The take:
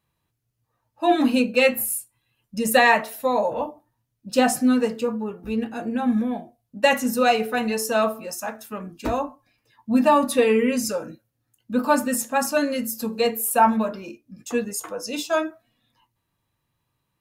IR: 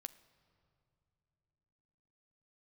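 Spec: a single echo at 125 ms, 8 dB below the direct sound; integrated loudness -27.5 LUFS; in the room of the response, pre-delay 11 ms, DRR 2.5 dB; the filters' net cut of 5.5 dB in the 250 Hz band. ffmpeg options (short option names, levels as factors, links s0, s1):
-filter_complex "[0:a]equalizer=f=250:t=o:g=-6,aecho=1:1:125:0.398,asplit=2[s0][s1];[1:a]atrim=start_sample=2205,adelay=11[s2];[s1][s2]afir=irnorm=-1:irlink=0,volume=1.33[s3];[s0][s3]amix=inputs=2:normalize=0,volume=0.473"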